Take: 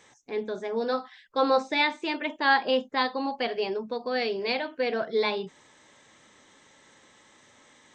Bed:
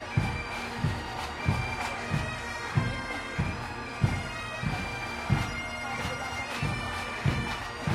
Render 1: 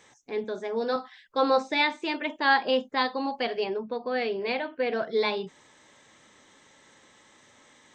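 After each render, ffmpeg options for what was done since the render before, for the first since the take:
-filter_complex "[0:a]asettb=1/sr,asplit=3[s0][s1][s2];[s0]atrim=end=0.444[s3];[s1]atrim=start=0.44:end=0.96,asetpts=PTS-STARTPTS,afade=t=in:d=0.004:c=qsin,afade=t=out:st=0.516:d=0.004:c=qsin,highpass=160[s4];[s2]atrim=start=0.956[s5];[s3][s4]acrossfade=d=0.004:c1=hsin:c2=qsin[s6];[s6][s5]acrossfade=d=0.004:c1=qsin:c2=hsin,asettb=1/sr,asplit=3[s7][s8][s9];[s7]atrim=end=3.644[s10];[s8]atrim=start=3.64:end=4.92,asetpts=PTS-STARTPTS,afade=t=in:d=0.004:c=qsin,afade=t=out:st=1.276:d=0.004:c=qsin,lowpass=3200[s11];[s9]atrim=start=4.916[s12];[s10][s11]acrossfade=d=0.004:c1=hsin:c2=qsin[s13];[s13][s12]acrossfade=d=0.004:c1=qsin:c2=hsin"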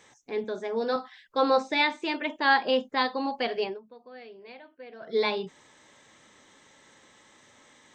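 -filter_complex "[0:a]asplit=3[s0][s1][s2];[s0]atrim=end=3.8,asetpts=PTS-STARTPTS,afade=t=out:st=3.64:d=0.16:silence=0.133352[s3];[s1]atrim=start=3.8:end=5,asetpts=PTS-STARTPTS,volume=0.133[s4];[s2]atrim=start=5,asetpts=PTS-STARTPTS,afade=t=in:d=0.16:silence=0.133352[s5];[s3][s4][s5]concat=n=3:v=0:a=1"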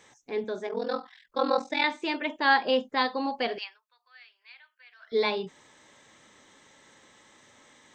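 -filter_complex "[0:a]asettb=1/sr,asplit=3[s0][s1][s2];[s0]atrim=end=0.674[s3];[s1]atrim=start=0.67:end=1.84,asetpts=PTS-STARTPTS,afade=t=in:d=0.004:c=qsin,afade=t=out:st=1.166:d=0.004:c=qsin,aeval=exprs='val(0)*sin(2*PI*21*n/s)':c=same[s4];[s2]atrim=start=1.836[s5];[s3][s4]acrossfade=d=0.004:c1=hsin:c2=qsin[s6];[s6][s5]acrossfade=d=0.004:c1=qsin:c2=hsin,asettb=1/sr,asplit=3[s7][s8][s9];[s7]atrim=end=3.584[s10];[s8]atrim=start=3.58:end=5.12,asetpts=PTS-STARTPTS,afade=t=in:d=0.004:c=qsin,afade=t=out:st=1.536:d=0.004:c=qsin,highpass=f=1300:w=0.5412,highpass=f=1300:w=1.3066[s11];[s9]atrim=start=5.116[s12];[s10][s11]acrossfade=d=0.004:c1=hsin:c2=qsin[s13];[s13][s12]acrossfade=d=0.004:c1=qsin:c2=hsin"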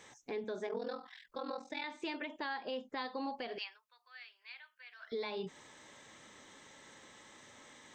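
-af "acompressor=threshold=0.0224:ratio=5,alimiter=level_in=2:limit=0.0631:level=0:latency=1:release=181,volume=0.501"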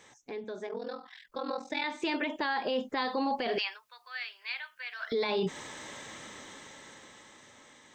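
-af "dynaudnorm=f=350:g=11:m=5.01,alimiter=limit=0.075:level=0:latency=1:release=12"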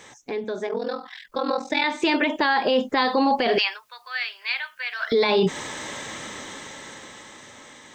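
-af "volume=3.35"

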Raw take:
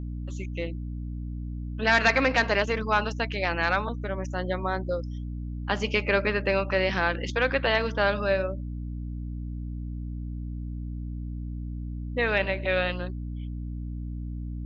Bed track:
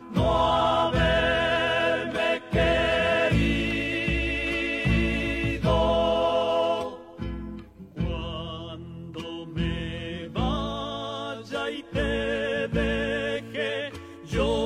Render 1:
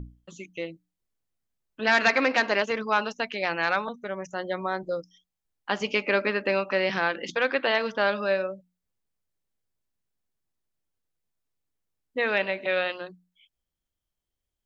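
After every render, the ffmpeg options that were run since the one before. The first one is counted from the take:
-af "bandreject=f=60:t=h:w=6,bandreject=f=120:t=h:w=6,bandreject=f=180:t=h:w=6,bandreject=f=240:t=h:w=6,bandreject=f=300:t=h:w=6"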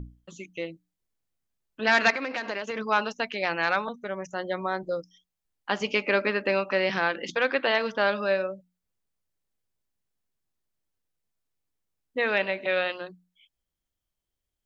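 -filter_complex "[0:a]asettb=1/sr,asplit=3[s0][s1][s2];[s0]atrim=end=2.104[s3];[s1]atrim=start=2.1:end=2.76,asetpts=PTS-STARTPTS,afade=t=in:d=0.004:c=qsin,afade=t=out:st=0.656:d=0.004:c=qsin,acompressor=threshold=0.0447:ratio=6:attack=3.2:release=140:knee=1:detection=peak[s4];[s2]atrim=start=2.756[s5];[s3][s4]acrossfade=d=0.004:c1=hsin:c2=qsin[s6];[s6][s5]acrossfade=d=0.004:c1=qsin:c2=hsin"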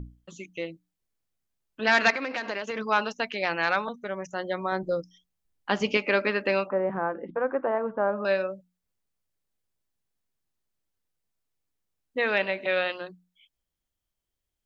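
-filter_complex "[0:a]asettb=1/sr,asplit=3[s0][s1][s2];[s0]atrim=end=4.724[s3];[s1]atrim=start=4.72:end=5.97,asetpts=PTS-STARTPTS,afade=t=in:d=0.004:c=qsin,afade=t=out:st=1.246:d=0.004:c=qsin,lowshelf=f=360:g=6.5[s4];[s2]atrim=start=5.966[s5];[s3][s4]acrossfade=d=0.004:c1=hsin:c2=qsin[s6];[s6][s5]acrossfade=d=0.004:c1=qsin:c2=hsin,asettb=1/sr,asplit=3[s7][s8][s9];[s7]atrim=end=6.674[s10];[s8]atrim=start=6.67:end=8.25,asetpts=PTS-STARTPTS,afade=t=in:d=0.004:c=qsin,afade=t=out:st=1.576:d=0.004:c=qsin,lowpass=f=1200:w=0.5412,lowpass=f=1200:w=1.3066[s11];[s9]atrim=start=8.246[s12];[s10][s11]acrossfade=d=0.004:c1=hsin:c2=qsin[s13];[s13][s12]acrossfade=d=0.004:c1=qsin:c2=hsin"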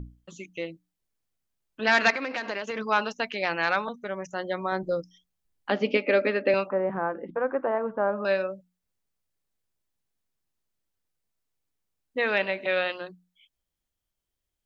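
-filter_complex "[0:a]asettb=1/sr,asplit=3[s0][s1][s2];[s0]atrim=end=5.704[s3];[s1]atrim=start=5.7:end=6.54,asetpts=PTS-STARTPTS,afade=t=in:d=0.004:c=qsin,afade=t=out:st=0.836:d=0.004:c=qsin,highpass=200,equalizer=f=270:t=q:w=4:g=9,equalizer=f=540:t=q:w=4:g=8,equalizer=f=1000:t=q:w=4:g=-10,equalizer=f=1500:t=q:w=4:g=-3,equalizer=f=2900:t=q:w=4:g=-4,lowpass=f=4200:w=0.5412,lowpass=f=4200:w=1.3066[s4];[s2]atrim=start=6.536[s5];[s3][s4]acrossfade=d=0.004:c1=hsin:c2=qsin[s6];[s6][s5]acrossfade=d=0.004:c1=qsin:c2=hsin"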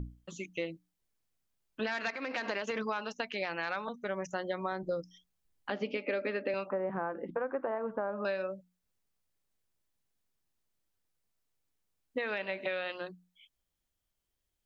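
-af "alimiter=limit=0.112:level=0:latency=1:release=444,acompressor=threshold=0.0316:ratio=6"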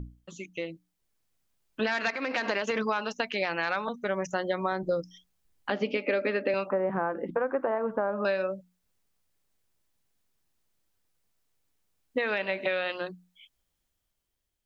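-af "dynaudnorm=f=280:g=7:m=2"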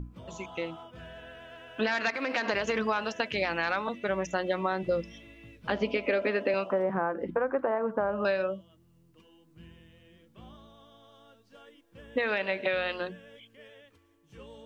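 -filter_complex "[1:a]volume=0.0631[s0];[0:a][s0]amix=inputs=2:normalize=0"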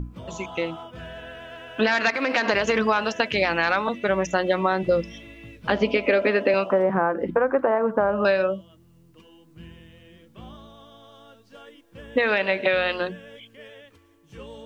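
-af "volume=2.37"

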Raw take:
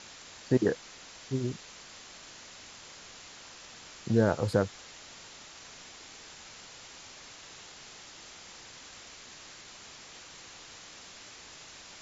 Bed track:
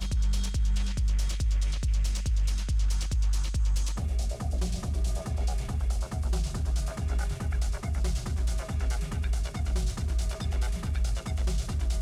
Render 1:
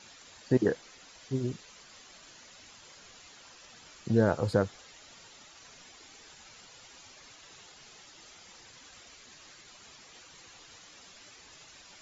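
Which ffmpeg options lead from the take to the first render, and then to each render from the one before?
-af "afftdn=nr=9:nf=-50"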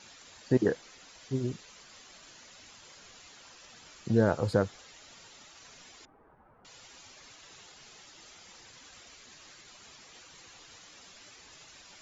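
-filter_complex "[0:a]asettb=1/sr,asplit=3[s0][s1][s2];[s0]atrim=end=6.054[s3];[s1]atrim=start=6.05:end=6.65,asetpts=PTS-STARTPTS,afade=t=in:d=0.004:c=qsin,afade=t=out:st=0.596:d=0.004:c=qsin,lowpass=f=1200:w=0.5412,lowpass=f=1200:w=1.3066[s4];[s2]atrim=start=6.646[s5];[s3][s4]acrossfade=d=0.004:c1=hsin:c2=qsin[s6];[s6][s5]acrossfade=d=0.004:c1=qsin:c2=hsin"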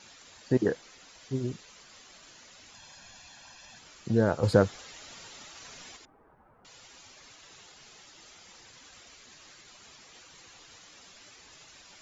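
-filter_complex "[0:a]asettb=1/sr,asplit=3[s0][s1][s2];[s0]atrim=end=2.744[s3];[s1]atrim=start=2.74:end=3.79,asetpts=PTS-STARTPTS,afade=t=in:d=0.004:c=qsin,afade=t=out:st=1.046:d=0.004:c=qsin,aecho=1:1:1.2:0.69,atrim=end_sample=46305[s4];[s2]atrim=start=3.786[s5];[s3][s4]acrossfade=d=0.004:c1=hsin:c2=qsin[s6];[s6][s5]acrossfade=d=0.004:c1=qsin:c2=hsin,asettb=1/sr,asplit=3[s7][s8][s9];[s7]atrim=end=4.434[s10];[s8]atrim=start=4.43:end=5.97,asetpts=PTS-STARTPTS,afade=t=in:d=0.004:c=qsin,afade=t=out:st=1.536:d=0.004:c=qsin,acontrast=37[s11];[s9]atrim=start=5.966[s12];[s10][s11]acrossfade=d=0.004:c1=hsin:c2=qsin[s13];[s13][s12]acrossfade=d=0.004:c1=qsin:c2=hsin"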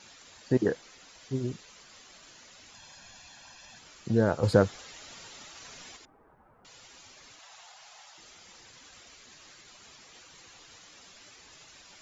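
-filter_complex "[0:a]asettb=1/sr,asplit=3[s0][s1][s2];[s0]atrim=end=7.394[s3];[s1]atrim=start=7.39:end=8.18,asetpts=PTS-STARTPTS,afade=t=in:d=0.004:c=qsin,afade=t=out:st=0.786:d=0.004:c=qsin,lowshelf=f=500:t=q:w=3:g=-13.5[s4];[s2]atrim=start=8.176[s5];[s3][s4]acrossfade=d=0.004:c1=hsin:c2=qsin[s6];[s6][s5]acrossfade=d=0.004:c1=qsin:c2=hsin"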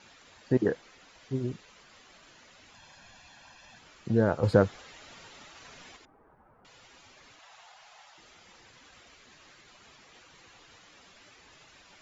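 -af "bass=f=250:g=0,treble=f=4000:g=-9"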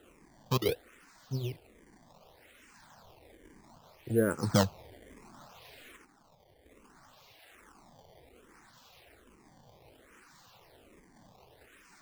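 -filter_complex "[0:a]acrusher=samples=19:mix=1:aa=0.000001:lfo=1:lforange=30.4:lforate=0.65,asplit=2[s0][s1];[s1]afreqshift=-1.2[s2];[s0][s2]amix=inputs=2:normalize=1"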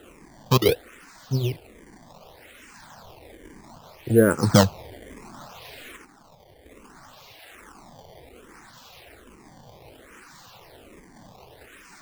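-af "volume=3.35,alimiter=limit=0.794:level=0:latency=1"

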